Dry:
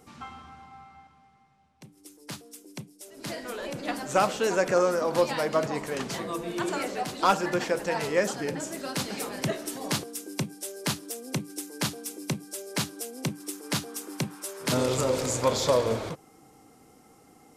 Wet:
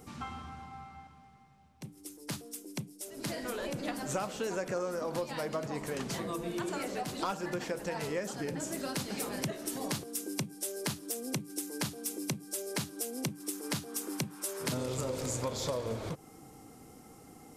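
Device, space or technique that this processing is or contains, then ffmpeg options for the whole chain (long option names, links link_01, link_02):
ASMR close-microphone chain: -af "lowshelf=frequency=250:gain=7,acompressor=threshold=-34dB:ratio=4,highshelf=frequency=8000:gain=5.5"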